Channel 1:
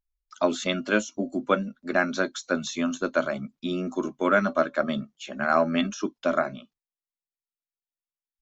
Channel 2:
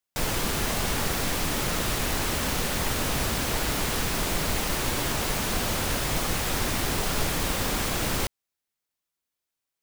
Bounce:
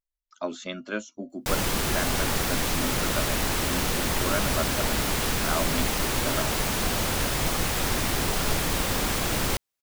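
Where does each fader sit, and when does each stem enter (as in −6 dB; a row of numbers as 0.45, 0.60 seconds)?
−8.0, +1.0 decibels; 0.00, 1.30 seconds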